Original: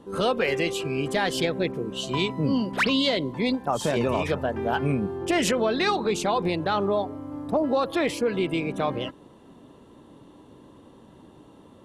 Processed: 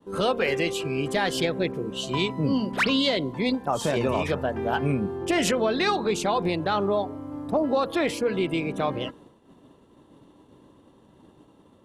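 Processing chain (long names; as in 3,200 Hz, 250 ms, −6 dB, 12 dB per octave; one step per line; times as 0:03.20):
downward expander −45 dBFS
hum removal 234.1 Hz, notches 7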